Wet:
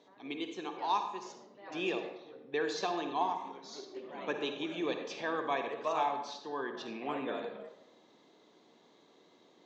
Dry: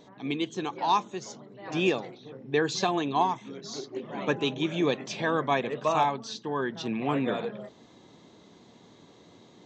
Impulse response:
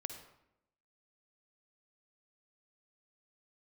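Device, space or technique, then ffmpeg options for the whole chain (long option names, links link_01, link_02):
supermarket ceiling speaker: -filter_complex "[0:a]highpass=310,lowpass=6200[link_01];[1:a]atrim=start_sample=2205[link_02];[link_01][link_02]afir=irnorm=-1:irlink=0,volume=-5dB"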